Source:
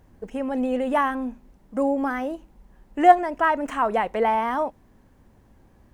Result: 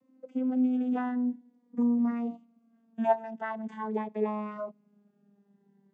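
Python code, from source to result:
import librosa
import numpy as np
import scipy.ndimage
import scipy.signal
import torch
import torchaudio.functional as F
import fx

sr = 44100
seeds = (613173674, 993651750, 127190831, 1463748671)

y = fx.vocoder_glide(x, sr, note=60, semitones=-5)
y = fx.notch_cascade(y, sr, direction='rising', hz=0.45)
y = F.gain(torch.from_numpy(y), -5.5).numpy()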